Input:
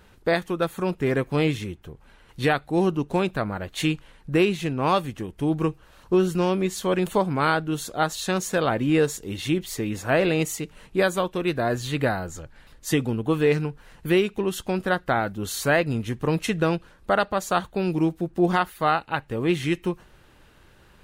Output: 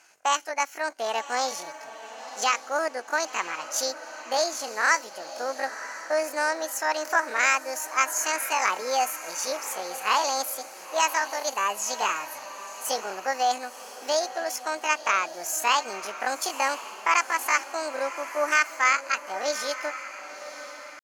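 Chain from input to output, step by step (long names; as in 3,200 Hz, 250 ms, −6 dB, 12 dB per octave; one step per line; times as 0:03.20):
loudspeaker in its box 470–8,100 Hz, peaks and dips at 920 Hz +4 dB, 2,100 Hz −9 dB, 3,900 Hz +9 dB, 5,700 Hz +4 dB
pitch shifter +9 semitones
feedback delay with all-pass diffusion 1,010 ms, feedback 43%, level −12.5 dB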